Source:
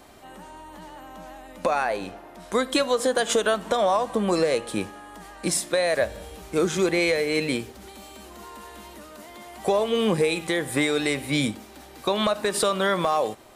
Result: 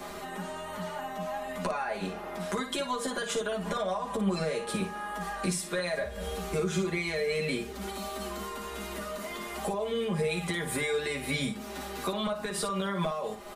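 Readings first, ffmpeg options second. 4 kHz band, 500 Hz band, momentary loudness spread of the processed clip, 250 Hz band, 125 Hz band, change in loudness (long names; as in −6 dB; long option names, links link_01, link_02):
−7.0 dB, −8.0 dB, 8 LU, −6.0 dB, −2.0 dB, −8.5 dB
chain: -filter_complex "[0:a]equalizer=frequency=1300:width=0.66:gain=3.5,aecho=1:1:4.9:0.92,alimiter=limit=-16dB:level=0:latency=1:release=207,acrossover=split=130[link_01][link_02];[link_02]acompressor=threshold=-42dB:ratio=2.5[link_03];[link_01][link_03]amix=inputs=2:normalize=0,asplit=2[link_04][link_05];[link_05]aecho=0:1:11|56:0.631|0.422[link_06];[link_04][link_06]amix=inputs=2:normalize=0,volume=4dB"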